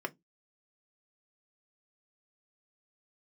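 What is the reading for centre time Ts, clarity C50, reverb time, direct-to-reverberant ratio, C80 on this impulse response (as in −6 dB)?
4 ms, 28.5 dB, 0.15 s, 4.0 dB, 38.0 dB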